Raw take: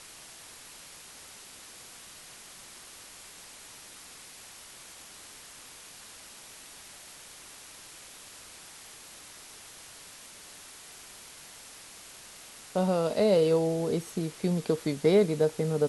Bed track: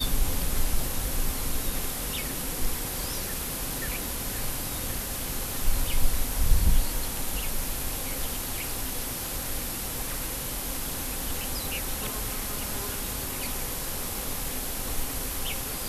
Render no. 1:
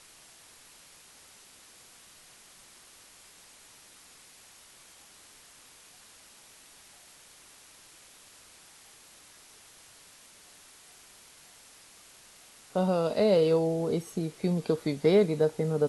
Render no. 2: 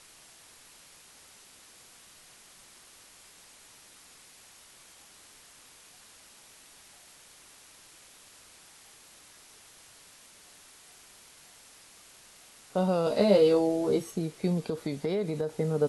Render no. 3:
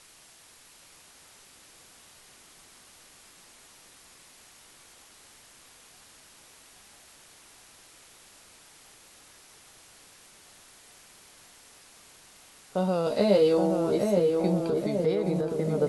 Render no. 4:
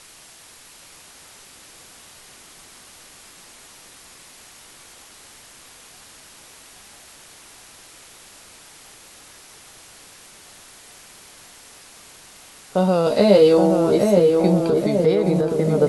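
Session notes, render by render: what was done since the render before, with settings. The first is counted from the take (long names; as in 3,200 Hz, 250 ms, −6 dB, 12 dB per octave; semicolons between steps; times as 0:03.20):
noise reduction from a noise print 6 dB
0:13.05–0:14.11: double-tracking delay 15 ms −2 dB; 0:14.63–0:15.55: downward compressor, threshold −26 dBFS
feedback echo with a low-pass in the loop 822 ms, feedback 57%, low-pass 1,700 Hz, level −3 dB
level +8.5 dB; brickwall limiter −3 dBFS, peak gain reduction 1 dB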